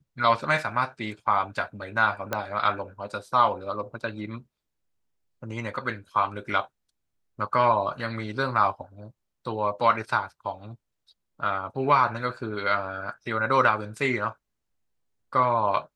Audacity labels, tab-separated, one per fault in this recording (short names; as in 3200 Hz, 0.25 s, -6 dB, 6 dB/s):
2.330000	2.330000	pop -12 dBFS